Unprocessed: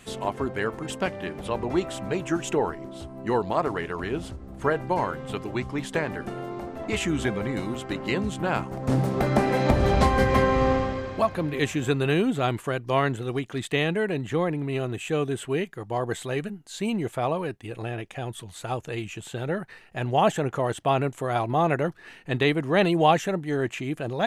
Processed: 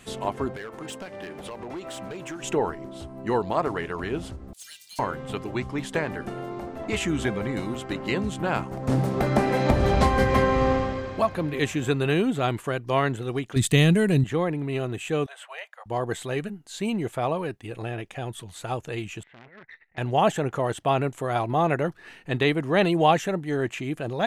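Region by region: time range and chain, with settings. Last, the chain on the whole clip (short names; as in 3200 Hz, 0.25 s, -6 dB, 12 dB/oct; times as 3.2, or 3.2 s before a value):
0.56–2.43 low shelf 160 Hz -11 dB + compressor 5:1, threshold -31 dBFS + hard clip -30.5 dBFS
4.53–4.99 inverse Chebyshev high-pass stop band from 1100 Hz, stop band 60 dB + high shelf 5300 Hz +5 dB + sample leveller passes 3
13.56–14.24 tone controls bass +14 dB, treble +14 dB + notch 830 Hz
15.26–15.86 steep high-pass 560 Hz 72 dB/oct + high shelf 4100 Hz -11 dB + hard clip -25.5 dBFS
19.23–19.98 negative-ratio compressor -31 dBFS, ratio -0.5 + ladder low-pass 2100 Hz, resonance 85% + core saturation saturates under 2700 Hz
whole clip: dry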